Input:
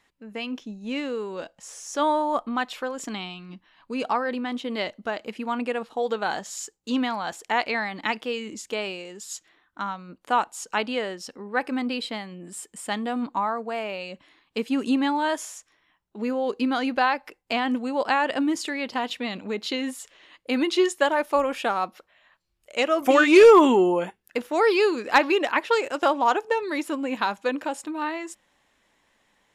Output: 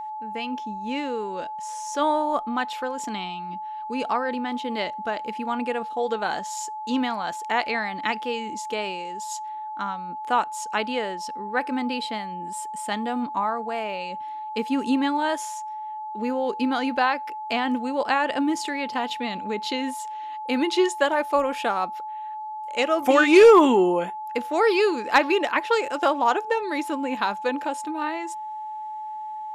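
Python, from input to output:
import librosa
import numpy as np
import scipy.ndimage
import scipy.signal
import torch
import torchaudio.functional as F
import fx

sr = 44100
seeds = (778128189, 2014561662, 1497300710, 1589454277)

y = x + 10.0 ** (-31.0 / 20.0) * np.sin(2.0 * np.pi * 860.0 * np.arange(len(x)) / sr)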